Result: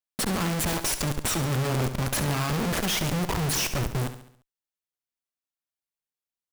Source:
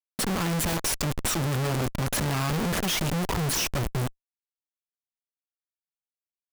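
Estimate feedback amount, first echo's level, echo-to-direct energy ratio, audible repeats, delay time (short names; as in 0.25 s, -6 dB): 48%, -11.0 dB, -10.0 dB, 4, 69 ms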